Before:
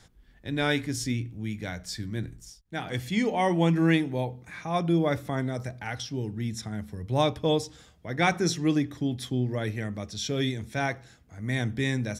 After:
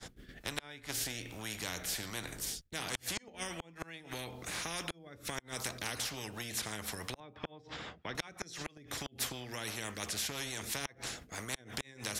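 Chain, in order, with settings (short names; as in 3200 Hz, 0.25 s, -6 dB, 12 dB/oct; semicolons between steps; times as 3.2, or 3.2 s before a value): expander -49 dBFS; rotary speaker horn 1.2 Hz, later 6 Hz, at 5.04; flipped gate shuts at -18 dBFS, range -40 dB; 7.2–8.15 BPF 130–2100 Hz; compressor, threshold -35 dBFS, peak gain reduction 11 dB; spectral compressor 4:1; gain +4 dB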